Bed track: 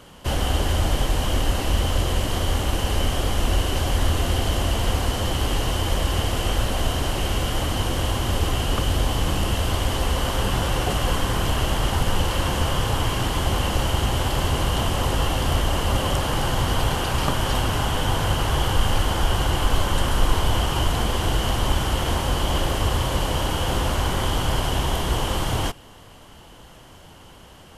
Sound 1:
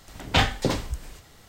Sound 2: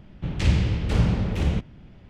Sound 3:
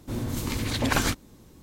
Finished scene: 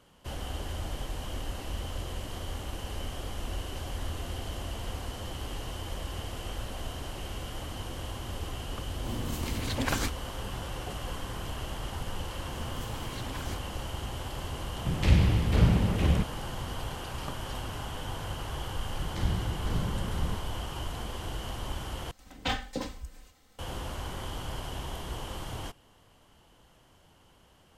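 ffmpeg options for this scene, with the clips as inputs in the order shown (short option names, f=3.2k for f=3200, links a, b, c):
-filter_complex "[3:a]asplit=2[a][b];[2:a]asplit=2[c][d];[0:a]volume=-14.5dB[e];[b]alimiter=limit=-18.5dB:level=0:latency=1:release=71[f];[c]equalizer=f=6.5k:w=1.5:g=-3[g];[d]equalizer=f=2.6k:w=6.1:g=-13.5[h];[1:a]aecho=1:1:3.9:0.64[i];[e]asplit=2[j][k];[j]atrim=end=22.114[l];[i]atrim=end=1.48,asetpts=PTS-STARTPTS,volume=-12dB[m];[k]atrim=start=23.586[n];[a]atrim=end=1.62,asetpts=PTS-STARTPTS,volume=-6dB,afade=t=in:d=0.004:c=hsin,afade=t=out:st=1.616:d=0.004:c=hsin,adelay=8960[o];[f]atrim=end=1.62,asetpts=PTS-STARTPTS,volume=-13.5dB,afade=t=in:d=0.004:c=hsin,afade=t=out:st=1.616:d=0.004:c=hsin,adelay=12440[p];[g]atrim=end=2.09,asetpts=PTS-STARTPTS,volume=-1.5dB,afade=t=in:d=0.004:c=hsin,afade=t=out:st=2.086:d=0.004:c=hsin,adelay=14630[q];[h]atrim=end=2.09,asetpts=PTS-STARTPTS,volume=-10.5dB,afade=t=in:d=0.004:c=hsin,afade=t=out:st=2.086:d=0.004:c=hsin,adelay=827316S[r];[l][m]acrossfade=d=0.004:c1=hsin:c2=hsin[s];[s][n]acrossfade=d=0.004:c1=hsin:c2=hsin[t];[t][o][p][q][r]amix=inputs=5:normalize=0"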